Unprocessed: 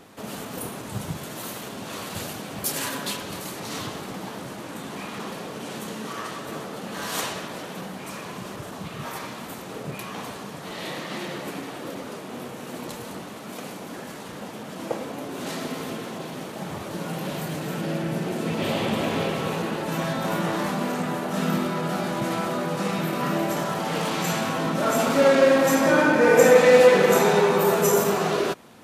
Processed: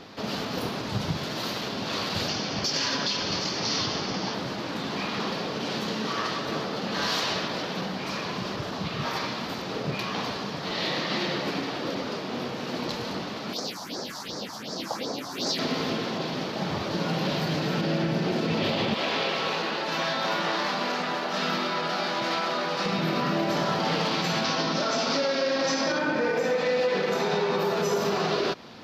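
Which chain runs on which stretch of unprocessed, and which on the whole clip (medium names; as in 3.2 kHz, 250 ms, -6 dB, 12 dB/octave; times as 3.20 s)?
2.28–4.34 s: resonant high shelf 7.7 kHz -10.5 dB, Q 3 + band-stop 3.9 kHz, Q 15
13.53–15.59 s: tone controls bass -8 dB, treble +11 dB + phase shifter stages 4, 2.7 Hz, lowest notch 390–2900 Hz
18.94–22.86 s: high-pass 810 Hz 6 dB/octave + treble shelf 10 kHz -5.5 dB
24.44–25.99 s: resonant low-pass 5.7 kHz, resonance Q 2.7 + bass shelf 170 Hz -6.5 dB
whole clip: resonant high shelf 6.6 kHz -12 dB, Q 3; compression 6:1, threshold -24 dBFS; peak limiter -20.5 dBFS; trim +3.5 dB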